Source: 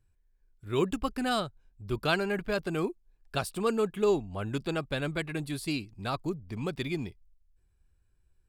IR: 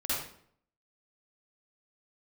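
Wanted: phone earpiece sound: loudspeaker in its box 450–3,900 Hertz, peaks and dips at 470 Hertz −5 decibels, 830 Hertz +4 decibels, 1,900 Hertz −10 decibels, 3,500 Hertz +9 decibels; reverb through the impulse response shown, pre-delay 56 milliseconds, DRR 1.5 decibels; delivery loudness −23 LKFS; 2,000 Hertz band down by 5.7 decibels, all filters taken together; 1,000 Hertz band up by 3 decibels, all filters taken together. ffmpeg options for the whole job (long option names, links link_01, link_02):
-filter_complex "[0:a]equalizer=frequency=1000:width_type=o:gain=5,equalizer=frequency=2000:width_type=o:gain=-7.5,asplit=2[link_01][link_02];[1:a]atrim=start_sample=2205,adelay=56[link_03];[link_02][link_03]afir=irnorm=-1:irlink=0,volume=-8.5dB[link_04];[link_01][link_04]amix=inputs=2:normalize=0,highpass=450,equalizer=frequency=470:width_type=q:width=4:gain=-5,equalizer=frequency=830:width_type=q:width=4:gain=4,equalizer=frequency=1900:width_type=q:width=4:gain=-10,equalizer=frequency=3500:width_type=q:width=4:gain=9,lowpass=frequency=3900:width=0.5412,lowpass=frequency=3900:width=1.3066,volume=10dB"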